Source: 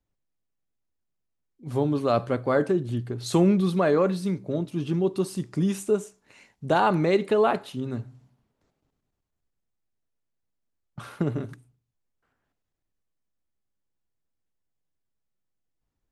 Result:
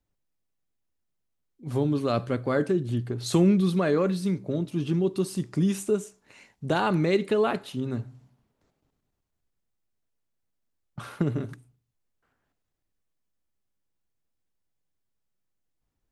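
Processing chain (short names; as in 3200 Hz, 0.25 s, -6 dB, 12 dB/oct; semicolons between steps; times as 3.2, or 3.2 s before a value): dynamic EQ 790 Hz, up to -7 dB, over -35 dBFS, Q 0.86; gain +1 dB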